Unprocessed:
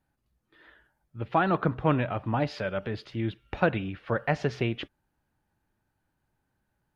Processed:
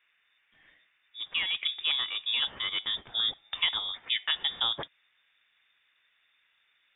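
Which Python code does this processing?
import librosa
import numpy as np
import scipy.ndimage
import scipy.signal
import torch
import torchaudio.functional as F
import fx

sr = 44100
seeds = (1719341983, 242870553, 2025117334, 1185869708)

y = fx.rider(x, sr, range_db=3, speed_s=0.5)
y = fx.dmg_noise_band(y, sr, seeds[0], low_hz=550.0, high_hz=2000.0, level_db=-69.0)
y = fx.peak_eq(y, sr, hz=530.0, db=-5.5, octaves=2.7)
y = fx.freq_invert(y, sr, carrier_hz=3600)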